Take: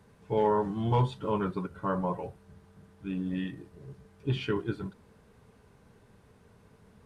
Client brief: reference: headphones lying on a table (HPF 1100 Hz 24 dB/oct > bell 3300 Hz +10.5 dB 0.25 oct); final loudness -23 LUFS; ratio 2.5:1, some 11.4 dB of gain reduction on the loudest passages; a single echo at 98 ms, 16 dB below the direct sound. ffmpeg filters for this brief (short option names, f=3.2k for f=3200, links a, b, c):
-af "acompressor=threshold=-39dB:ratio=2.5,highpass=f=1.1k:w=0.5412,highpass=f=1.1k:w=1.3066,equalizer=f=3.3k:t=o:w=0.25:g=10.5,aecho=1:1:98:0.158,volume=26dB"